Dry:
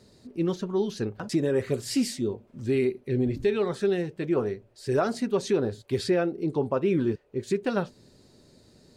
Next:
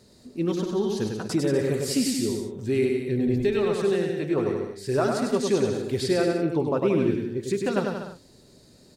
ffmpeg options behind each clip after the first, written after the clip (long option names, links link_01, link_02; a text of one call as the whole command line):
ffmpeg -i in.wav -filter_complex "[0:a]highshelf=frequency=6900:gain=6.5,asplit=2[link_01][link_02];[link_02]aecho=0:1:100|180|244|295.2|336.2:0.631|0.398|0.251|0.158|0.1[link_03];[link_01][link_03]amix=inputs=2:normalize=0" out.wav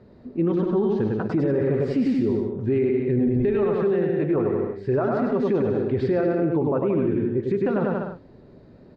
ffmpeg -i in.wav -af "lowpass=1900,alimiter=limit=-21dB:level=0:latency=1:release=38,aemphasis=mode=reproduction:type=75kf,volume=6.5dB" out.wav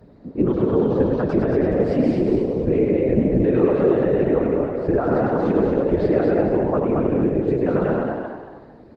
ffmpeg -i in.wav -filter_complex "[0:a]afftfilt=real='hypot(re,im)*cos(2*PI*random(0))':imag='hypot(re,im)*sin(2*PI*random(1))':win_size=512:overlap=0.75,asplit=5[link_01][link_02][link_03][link_04][link_05];[link_02]adelay=225,afreqshift=75,volume=-4dB[link_06];[link_03]adelay=450,afreqshift=150,volume=-13.6dB[link_07];[link_04]adelay=675,afreqshift=225,volume=-23.3dB[link_08];[link_05]adelay=900,afreqshift=300,volume=-32.9dB[link_09];[link_01][link_06][link_07][link_08][link_09]amix=inputs=5:normalize=0,volume=8dB" -ar 48000 -c:a libopus -b:a 24k out.opus